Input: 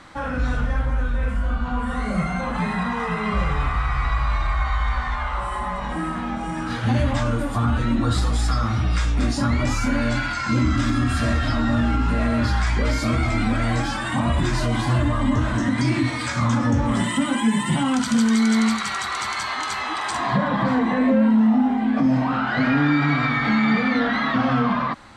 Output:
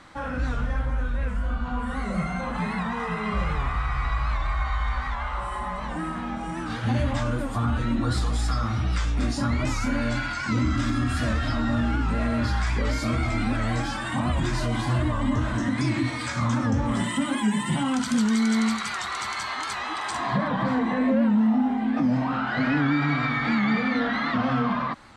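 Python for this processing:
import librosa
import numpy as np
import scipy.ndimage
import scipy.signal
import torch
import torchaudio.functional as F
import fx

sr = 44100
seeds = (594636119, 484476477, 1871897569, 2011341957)

y = fx.record_warp(x, sr, rpm=78.0, depth_cents=100.0)
y = F.gain(torch.from_numpy(y), -4.0).numpy()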